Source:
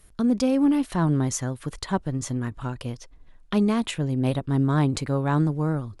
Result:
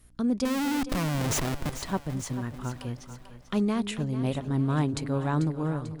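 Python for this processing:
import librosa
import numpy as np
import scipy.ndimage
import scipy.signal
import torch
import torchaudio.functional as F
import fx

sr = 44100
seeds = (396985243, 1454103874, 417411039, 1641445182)

y = fx.add_hum(x, sr, base_hz=60, snr_db=32)
y = fx.schmitt(y, sr, flips_db=-34.0, at=(0.45, 1.72))
y = fx.echo_split(y, sr, split_hz=500.0, low_ms=227, high_ms=442, feedback_pct=52, wet_db=-11.5)
y = F.gain(torch.from_numpy(y), -4.5).numpy()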